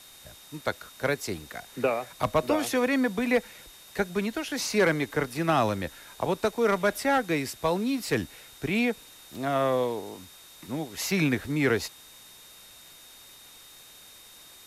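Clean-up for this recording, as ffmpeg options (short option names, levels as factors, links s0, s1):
-af "bandreject=f=3700:w=30,afftdn=nr=22:nf=-51"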